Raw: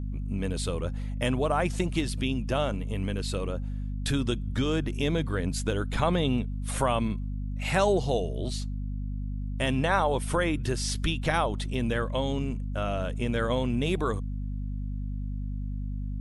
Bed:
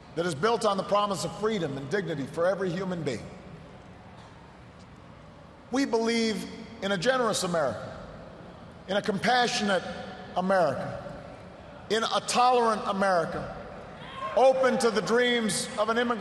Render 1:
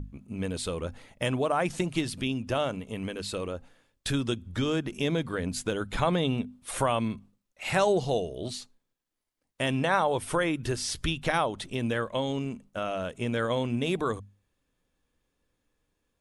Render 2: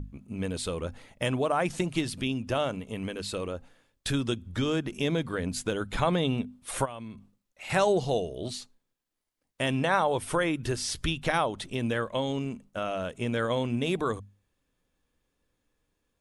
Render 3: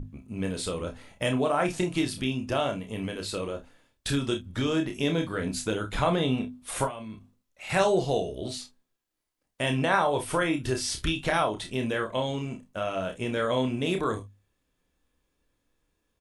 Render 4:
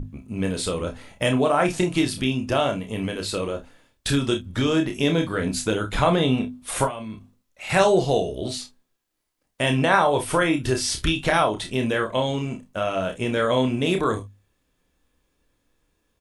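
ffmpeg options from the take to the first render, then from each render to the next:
-af "bandreject=f=50:t=h:w=6,bandreject=f=100:t=h:w=6,bandreject=f=150:t=h:w=6,bandreject=f=200:t=h:w=6,bandreject=f=250:t=h:w=6"
-filter_complex "[0:a]asplit=3[s0][s1][s2];[s0]afade=t=out:st=6.84:d=0.02[s3];[s1]acompressor=threshold=0.01:ratio=3:attack=3.2:release=140:knee=1:detection=peak,afade=t=in:st=6.84:d=0.02,afade=t=out:st=7.69:d=0.02[s4];[s2]afade=t=in:st=7.69:d=0.02[s5];[s3][s4][s5]amix=inputs=3:normalize=0"
-filter_complex "[0:a]asplit=2[s0][s1];[s1]adelay=28,volume=0.422[s2];[s0][s2]amix=inputs=2:normalize=0,aecho=1:1:31|47:0.376|0.178"
-af "volume=1.88"

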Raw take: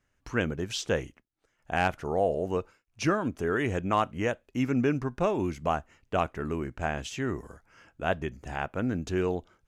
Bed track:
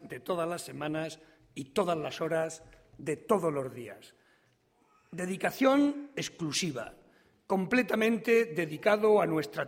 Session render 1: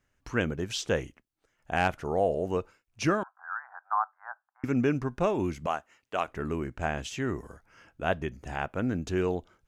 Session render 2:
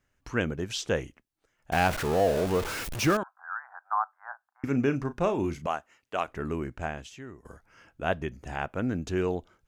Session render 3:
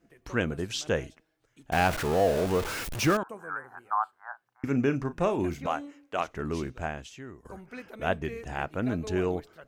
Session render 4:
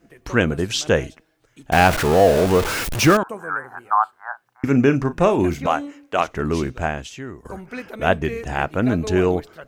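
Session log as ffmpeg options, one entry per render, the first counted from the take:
-filter_complex "[0:a]asettb=1/sr,asplit=3[s0][s1][s2];[s0]atrim=end=3.234[s3];[s1]atrim=start=3.23:end=4.64,asetpts=PTS-STARTPTS,afade=t=in:d=0.004:c=qsin,afade=t=out:st=1.406:d=0.004:c=qsin,asuperpass=centerf=1100:order=12:qfactor=1.3[s4];[s2]atrim=start=4.636[s5];[s3][s4]acrossfade=d=0.004:c1=hsin:c2=qsin[s6];[s6][s5]acrossfade=d=0.004:c1=qsin:c2=hsin,asettb=1/sr,asplit=3[s7][s8][s9];[s7]atrim=end=5.664[s10];[s8]atrim=start=5.66:end=6.28,asetpts=PTS-STARTPTS,afade=t=in:d=0.004:c=qsin,afade=t=out:st=0.616:d=0.004:c=qsin,highpass=f=690:p=1[s11];[s9]atrim=start=6.276[s12];[s10][s11]acrossfade=d=0.004:c1=hsin:c2=qsin[s13];[s13][s12]acrossfade=d=0.004:c1=qsin:c2=hsin,asettb=1/sr,asplit=3[s14][s15][s16];[s14]atrim=end=7.434[s17];[s15]atrim=start=7.43:end=8.47,asetpts=PTS-STARTPTS,afade=t=in:d=0.004:c=qsin,afade=t=out:st=1.036:d=0.004:c=qsin,bandreject=f=7400:w=12[s18];[s16]atrim=start=8.466[s19];[s17][s18]acrossfade=d=0.004:c1=hsin:c2=qsin[s20];[s20][s19]acrossfade=d=0.004:c1=qsin:c2=hsin"
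-filter_complex "[0:a]asettb=1/sr,asplit=3[s0][s1][s2];[s0]atrim=end=1.724[s3];[s1]atrim=start=1.72:end=3.17,asetpts=PTS-STARTPTS,afade=t=in:d=0.004:c=qsin,afade=t=out:st=1.446:d=0.004:c=qsin,aeval=exprs='val(0)+0.5*0.0398*sgn(val(0))':c=same[s4];[s2]atrim=start=3.166[s5];[s3][s4]acrossfade=d=0.004:c1=hsin:c2=qsin[s6];[s6][s5]acrossfade=d=0.004:c1=qsin:c2=hsin,asettb=1/sr,asplit=3[s7][s8][s9];[s7]atrim=end=4.184[s10];[s8]atrim=start=4.18:end=5.66,asetpts=PTS-STARTPTS,afade=t=in:d=0.004:c=qsin,afade=t=out:st=1.476:d=0.004:c=qsin,asplit=2[s11][s12];[s12]adelay=36,volume=0.266[s13];[s11][s13]amix=inputs=2:normalize=0,atrim=end_sample=65268[s14];[s9]atrim=start=5.656[s15];[s10][s14]acrossfade=d=0.004:c1=hsin:c2=qsin[s16];[s16][s15]acrossfade=d=0.004:c1=qsin:c2=hsin,asplit=2[s17][s18];[s17]atrim=end=7.45,asetpts=PTS-STARTPTS,afade=t=out:st=6.73:d=0.72:c=qua:silence=0.177828[s19];[s18]atrim=start=7.45,asetpts=PTS-STARTPTS,afade=t=in:d=0.004:c=hsin:silence=0.177828[s20];[s19][s20]concat=n=2:v=0:a=1"
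-filter_complex "[1:a]volume=0.158[s0];[0:a][s0]amix=inputs=2:normalize=0"
-af "volume=3.16"

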